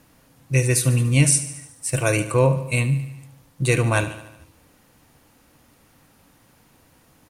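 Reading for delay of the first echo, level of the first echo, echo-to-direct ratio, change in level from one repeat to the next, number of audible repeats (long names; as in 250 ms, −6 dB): 73 ms, −13.5 dB, −11.5 dB, −4.5 dB, 5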